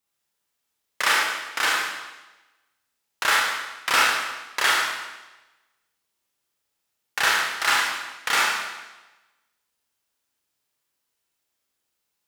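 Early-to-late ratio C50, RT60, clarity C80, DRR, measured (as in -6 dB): 0.0 dB, 1.1 s, 3.0 dB, -4.0 dB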